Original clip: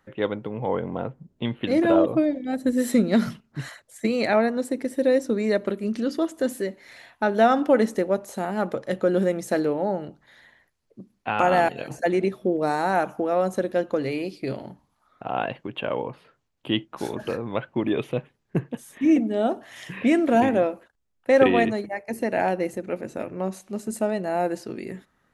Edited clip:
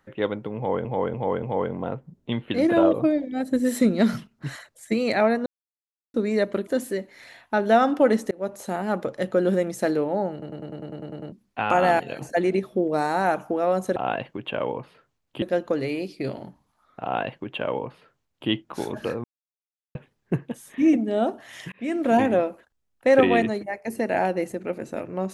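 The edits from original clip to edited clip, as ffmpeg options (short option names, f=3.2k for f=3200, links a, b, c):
-filter_complex "[0:a]asplit=23[a][b][c][d][e][f][g][h][i][j][k][l][m][n][o][p][q][r][s][t][u][v][w];[a]atrim=end=0.852[x];[b]atrim=start=0.558:end=0.852[y];[c]atrim=start=0.558:end=0.852[z];[d]atrim=start=0.558:end=4.59,asetpts=PTS-STARTPTS,afade=t=out:st=4.028:d=0.004:c=hsin[aa];[e]atrim=start=4.59:end=5.27,asetpts=PTS-STARTPTS,volume=0[ab];[f]atrim=start=5.27:end=5.802,asetpts=PTS-STARTPTS,afade=t=in:d=0.004:c=hsin[ac];[g]atrim=start=6.358:end=8,asetpts=PTS-STARTPTS,afade=t=out:st=1.638:d=0.004:c=hsin[ad];[h]atrim=start=8:end=10.112,asetpts=PTS-STARTPTS,afade=t=in:d=0.25[ae];[i]atrim=start=10.008:end=10.112[af];[j]atrim=start=10.008:end=10.112[ag];[k]atrim=start=10.008:end=10.112[ah];[l]atrim=start=10.008:end=10.112[ai];[m]atrim=start=10.008:end=10.112[aj];[n]atrim=start=10.008:end=10.112[ak];[o]atrim=start=10.008:end=10.112[al];[p]atrim=start=10.008:end=10.112[am];[q]atrim=start=10.008:end=10.112[an];[r]atrim=start=11.008:end=13.652[ao];[s]atrim=start=15.258:end=16.722[ap];[t]atrim=start=13.648:end=17.47,asetpts=PTS-STARTPTS,afade=t=out:st=3.818:d=0.004:c=hsin[aq];[u]atrim=start=17.47:end=18.18,asetpts=PTS-STARTPTS,volume=0[ar];[v]atrim=start=18.18:end=19.95,asetpts=PTS-STARTPTS,afade=t=in:d=0.004:c=hsin,afade=t=out:st=1.766:d=0.004:c=hsin[as];[w]atrim=start=19.95,asetpts=PTS-STARTPTS,afade=t=in:d=0.43[at];[x][y]acrossfade=d=0.004:c1=hsin:c2=hsin[au];[au][z]acrossfade=d=0.004:c1=hsin:c2=hsin[av];[aa][ab][ac]concat=n=3:v=0:a=1[aw];[av][aw]acrossfade=d=0.004:c1=hsin:c2=hsin[ax];[ad][ae]concat=n=2:v=0:a=1[ay];[ax][ay]acrossfade=d=0.004:c1=hsin:c2=hsin[az];[az][af]acrossfade=d=0.004:c1=hsin:c2=hsin[ba];[ba][ag]acrossfade=d=0.004:c1=hsin:c2=hsin[bb];[bb][ah]acrossfade=d=0.004:c1=hsin:c2=hsin[bc];[bc][ai]acrossfade=d=0.004:c1=hsin:c2=hsin[bd];[bd][aj]acrossfade=d=0.004:c1=hsin:c2=hsin[be];[be][ak]acrossfade=d=0.004:c1=hsin:c2=hsin[bf];[bf][al]acrossfade=d=0.004:c1=hsin:c2=hsin[bg];[bg][am]acrossfade=d=0.004:c1=hsin:c2=hsin[bh];[bh][an]acrossfade=d=0.004:c1=hsin:c2=hsin[bi];[bi][ao]acrossfade=d=0.004:c1=hsin:c2=hsin[bj];[bj][ap]acrossfade=d=0.004:c1=hsin:c2=hsin[bk];[aq][ar][as][at]concat=n=4:v=0:a=1[bl];[bk][bl]acrossfade=d=0.004:c1=hsin:c2=hsin"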